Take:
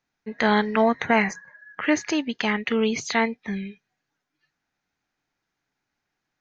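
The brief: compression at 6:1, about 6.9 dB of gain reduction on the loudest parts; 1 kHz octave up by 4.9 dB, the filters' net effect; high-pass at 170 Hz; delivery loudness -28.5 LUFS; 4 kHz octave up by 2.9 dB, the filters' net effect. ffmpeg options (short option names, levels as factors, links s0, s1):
-af "highpass=170,equalizer=f=1000:t=o:g=6,equalizer=f=4000:t=o:g=3.5,acompressor=threshold=0.112:ratio=6,volume=0.75"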